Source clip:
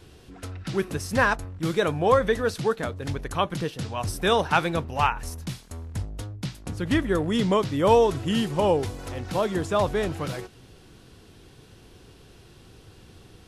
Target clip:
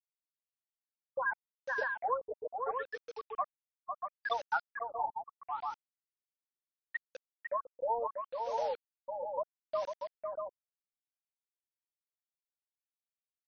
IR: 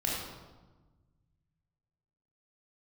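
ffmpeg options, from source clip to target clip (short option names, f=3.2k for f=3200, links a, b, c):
-af "highpass=f=560:w=0.5412,highpass=f=560:w=1.3066,afftfilt=real='re*gte(hypot(re,im),0.398)':imag='im*gte(hypot(re,im),0.398)':win_size=1024:overlap=0.75,acompressor=threshold=-33dB:ratio=3,crystalizer=i=8:c=0,acrusher=bits=6:mix=0:aa=0.000001,aecho=1:1:502|640:0.531|0.531,afftfilt=real='re*lt(b*sr/1024,910*pow(6600/910,0.5+0.5*sin(2*PI*0.73*pts/sr)))':imag='im*lt(b*sr/1024,910*pow(6600/910,0.5+0.5*sin(2*PI*0.73*pts/sr)))':win_size=1024:overlap=0.75,volume=-3dB"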